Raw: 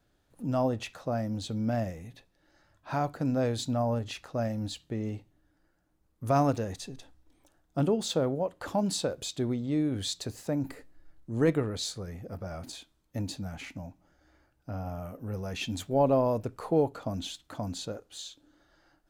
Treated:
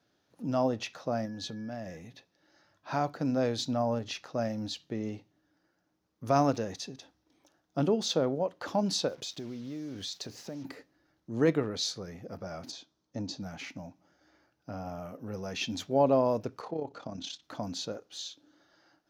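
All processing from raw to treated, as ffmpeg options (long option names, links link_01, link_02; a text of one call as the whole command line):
ffmpeg -i in.wav -filter_complex "[0:a]asettb=1/sr,asplit=3[link_01][link_02][link_03];[link_01]atrim=end=1.254[link_04];[link_02]atrim=start=1.25:end=1.97,asetpts=PTS-STARTPTS,afade=type=in:duration=0.004:curve=qsin,afade=type=out:start_time=0.716:duration=0.004:curve=qsin,acompressor=threshold=-34dB:ratio=12:attack=3.2:release=140:knee=1:detection=peak,aeval=exprs='val(0)+0.00158*sin(2*PI*1700*n/s)':channel_layout=same[link_05];[link_03]atrim=start=1.966[link_06];[link_04][link_05]acrossfade=duration=0.004:curve1=hsin:curve2=qsin[link_07];[link_07][link_06]acrossfade=duration=0.004:curve1=qsin:curve2=hsin,asettb=1/sr,asplit=3[link_08][link_09][link_10];[link_08]atrim=end=9.084[link_11];[link_09]atrim=start=9.08:end=10.65,asetpts=PTS-STARTPTS,afade=type=in:duration=0.004:curve=qsin,afade=type=out:start_time=1.566:duration=0.004:curve=qsin,acompressor=threshold=-35dB:ratio=10:attack=3.2:release=140:knee=1:detection=peak,acrusher=bits=8:mix=0:aa=0.5[link_12];[link_10]atrim=start=10.646[link_13];[link_11][link_12]acrossfade=duration=0.004:curve1=hsin:curve2=qsin[link_14];[link_14][link_13]acrossfade=duration=0.004:curve1=qsin:curve2=hsin,asettb=1/sr,asplit=3[link_15][link_16][link_17];[link_15]atrim=end=12.714[link_18];[link_16]atrim=start=12.71:end=13.4,asetpts=PTS-STARTPTS,afade=type=in:duration=0.004:curve=qsin,afade=type=out:start_time=0.686:duration=0.004:curve=qsin,lowpass=frequency=7200:width=0.5412,lowpass=frequency=7200:width=1.3066,equalizer=frequency=2300:width=1.1:gain=-7.5[link_19];[link_17]atrim=start=13.396[link_20];[link_18][link_19]acrossfade=duration=0.004:curve1=hsin:curve2=qsin[link_21];[link_21][link_20]acrossfade=duration=0.004:curve1=qsin:curve2=hsin,asettb=1/sr,asplit=3[link_22][link_23][link_24];[link_22]atrim=end=16.614[link_25];[link_23]atrim=start=16.61:end=17.43,asetpts=PTS-STARTPTS,afade=type=in:duration=0.004:curve=qsin,afade=type=out:start_time=0.816:duration=0.004:curve=qsin,lowpass=frequency=8600:width=0.5412,lowpass=frequency=8600:width=1.3066,acompressor=threshold=-33dB:ratio=2:attack=3.2:release=140:knee=1:detection=peak,tremolo=f=33:d=0.621[link_26];[link_24]atrim=start=17.426[link_27];[link_25][link_26]acrossfade=duration=0.004:curve1=hsin:curve2=qsin[link_28];[link_28][link_27]acrossfade=duration=0.004:curve1=qsin:curve2=hsin,highpass=150,highshelf=frequency=6900:width_type=q:width=3:gain=-6" out.wav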